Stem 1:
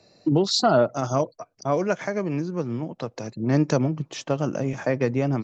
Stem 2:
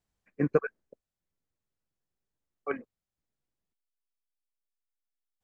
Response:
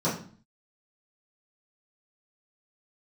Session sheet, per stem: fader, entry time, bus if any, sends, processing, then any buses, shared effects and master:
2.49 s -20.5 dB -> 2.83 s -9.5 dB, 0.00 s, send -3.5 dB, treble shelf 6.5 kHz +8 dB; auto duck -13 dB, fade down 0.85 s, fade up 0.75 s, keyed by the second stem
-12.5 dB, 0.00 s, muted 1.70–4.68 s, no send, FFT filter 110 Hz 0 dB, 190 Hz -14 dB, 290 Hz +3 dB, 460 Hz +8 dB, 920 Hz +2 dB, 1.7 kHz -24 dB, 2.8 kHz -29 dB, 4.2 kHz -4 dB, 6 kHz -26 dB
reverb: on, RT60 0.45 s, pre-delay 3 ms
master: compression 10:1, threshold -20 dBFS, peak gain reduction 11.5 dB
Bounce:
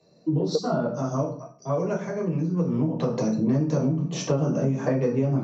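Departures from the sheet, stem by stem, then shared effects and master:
stem 1 -20.5 dB -> -14.0 dB; stem 2 -12.5 dB -> -1.0 dB

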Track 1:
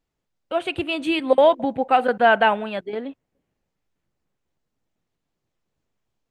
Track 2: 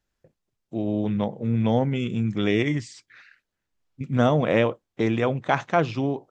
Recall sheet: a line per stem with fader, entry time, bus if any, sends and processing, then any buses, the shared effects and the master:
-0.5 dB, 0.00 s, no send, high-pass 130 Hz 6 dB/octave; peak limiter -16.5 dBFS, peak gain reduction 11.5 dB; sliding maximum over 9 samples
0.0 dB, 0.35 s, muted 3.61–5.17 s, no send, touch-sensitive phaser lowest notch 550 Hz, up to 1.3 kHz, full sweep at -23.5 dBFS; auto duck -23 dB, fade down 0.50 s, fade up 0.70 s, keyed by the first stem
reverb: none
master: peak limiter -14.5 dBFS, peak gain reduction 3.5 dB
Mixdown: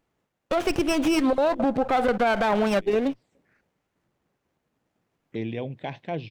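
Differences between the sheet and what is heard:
stem 1 -0.5 dB -> +8.5 dB; stem 2 0.0 dB -> -7.0 dB

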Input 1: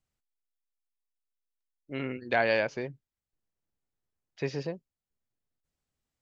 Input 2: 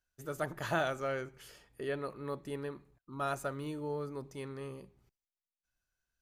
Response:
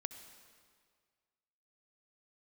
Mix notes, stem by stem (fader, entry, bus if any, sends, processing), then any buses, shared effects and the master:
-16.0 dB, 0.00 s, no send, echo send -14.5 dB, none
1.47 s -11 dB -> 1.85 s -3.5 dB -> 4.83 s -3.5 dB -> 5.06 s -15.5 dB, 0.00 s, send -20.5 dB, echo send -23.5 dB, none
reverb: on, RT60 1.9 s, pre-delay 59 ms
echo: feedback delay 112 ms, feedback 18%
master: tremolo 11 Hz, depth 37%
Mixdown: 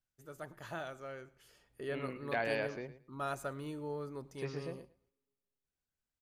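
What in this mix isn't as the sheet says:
stem 1 -16.0 dB -> -9.0 dB; master: missing tremolo 11 Hz, depth 37%

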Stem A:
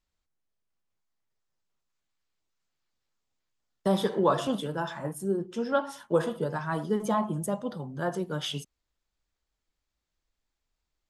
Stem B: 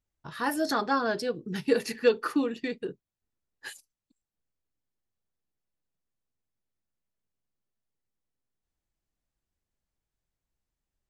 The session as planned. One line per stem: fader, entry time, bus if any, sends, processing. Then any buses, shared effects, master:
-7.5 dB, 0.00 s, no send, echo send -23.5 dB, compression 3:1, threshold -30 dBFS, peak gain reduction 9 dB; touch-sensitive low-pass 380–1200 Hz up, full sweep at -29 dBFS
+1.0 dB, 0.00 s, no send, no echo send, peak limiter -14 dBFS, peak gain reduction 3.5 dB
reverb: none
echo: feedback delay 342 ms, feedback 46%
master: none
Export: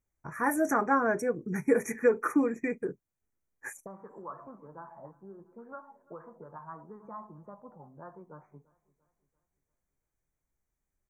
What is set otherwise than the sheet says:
stem A -7.5 dB -> -16.5 dB; master: extra brick-wall FIR band-stop 2.5–5.6 kHz

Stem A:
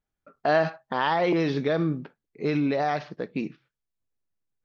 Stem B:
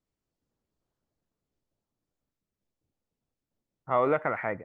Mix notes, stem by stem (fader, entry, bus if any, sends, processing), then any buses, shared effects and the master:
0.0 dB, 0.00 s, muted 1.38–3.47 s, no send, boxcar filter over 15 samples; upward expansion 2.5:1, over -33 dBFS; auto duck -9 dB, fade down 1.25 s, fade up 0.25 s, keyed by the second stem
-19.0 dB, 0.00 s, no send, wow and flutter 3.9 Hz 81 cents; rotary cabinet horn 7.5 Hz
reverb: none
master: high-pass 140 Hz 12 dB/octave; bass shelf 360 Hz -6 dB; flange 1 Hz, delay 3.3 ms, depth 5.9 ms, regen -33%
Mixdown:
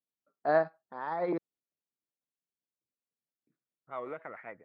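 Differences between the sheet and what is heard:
stem B -19.0 dB -> -10.5 dB; master: missing flange 1 Hz, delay 3.3 ms, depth 5.9 ms, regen -33%

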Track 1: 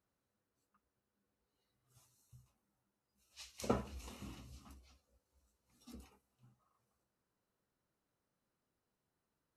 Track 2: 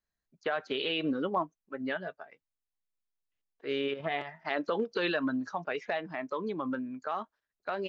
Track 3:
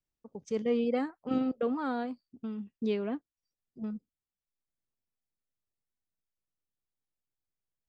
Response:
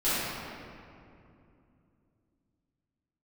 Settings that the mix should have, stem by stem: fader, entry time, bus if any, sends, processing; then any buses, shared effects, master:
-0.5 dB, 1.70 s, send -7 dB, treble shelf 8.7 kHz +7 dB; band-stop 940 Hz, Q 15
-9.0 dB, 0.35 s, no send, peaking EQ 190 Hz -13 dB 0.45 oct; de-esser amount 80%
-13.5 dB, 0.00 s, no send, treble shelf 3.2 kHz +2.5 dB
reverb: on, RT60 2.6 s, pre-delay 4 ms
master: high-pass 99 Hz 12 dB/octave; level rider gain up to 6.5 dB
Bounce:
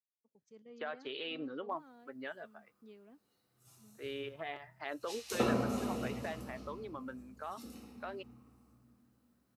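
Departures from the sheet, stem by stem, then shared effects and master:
stem 3 -13.5 dB -> -25.5 dB; master: missing level rider gain up to 6.5 dB

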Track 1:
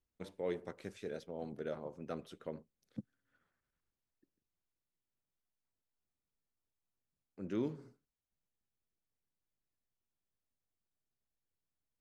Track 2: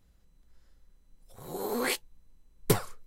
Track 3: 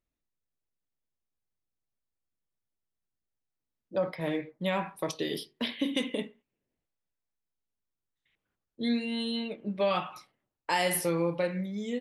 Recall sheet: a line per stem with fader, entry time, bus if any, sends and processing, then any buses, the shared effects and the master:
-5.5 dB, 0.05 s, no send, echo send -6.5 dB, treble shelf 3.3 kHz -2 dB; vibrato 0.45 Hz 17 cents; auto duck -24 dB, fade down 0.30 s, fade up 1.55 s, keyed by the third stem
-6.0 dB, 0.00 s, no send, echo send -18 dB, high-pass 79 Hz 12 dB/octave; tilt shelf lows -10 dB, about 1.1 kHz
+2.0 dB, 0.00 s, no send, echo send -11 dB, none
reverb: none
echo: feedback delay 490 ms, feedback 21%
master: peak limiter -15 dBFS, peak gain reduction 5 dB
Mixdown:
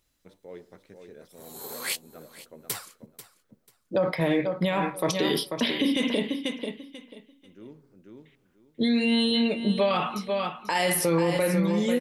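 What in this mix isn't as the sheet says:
stem 1: missing vibrato 0.45 Hz 17 cents; stem 3 +2.0 dB -> +10.5 dB

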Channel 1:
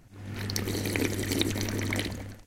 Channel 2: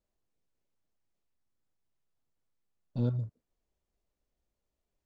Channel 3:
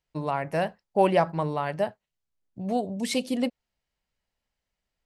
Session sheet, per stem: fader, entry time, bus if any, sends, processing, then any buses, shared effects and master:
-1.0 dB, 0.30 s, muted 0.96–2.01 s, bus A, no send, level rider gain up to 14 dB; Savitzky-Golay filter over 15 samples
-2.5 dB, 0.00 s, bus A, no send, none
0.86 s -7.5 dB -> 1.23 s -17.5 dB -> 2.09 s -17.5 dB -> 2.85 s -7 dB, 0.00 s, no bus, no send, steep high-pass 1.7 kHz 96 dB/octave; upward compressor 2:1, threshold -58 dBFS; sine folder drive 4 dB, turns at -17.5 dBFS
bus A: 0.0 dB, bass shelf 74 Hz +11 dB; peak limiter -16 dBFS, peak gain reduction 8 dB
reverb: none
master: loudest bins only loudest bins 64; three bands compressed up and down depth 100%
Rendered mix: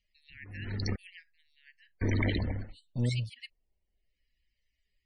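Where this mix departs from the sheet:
stem 1 -1.0 dB -> -7.5 dB; stem 3: missing sine folder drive 4 dB, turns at -17.5 dBFS; master: missing three bands compressed up and down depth 100%

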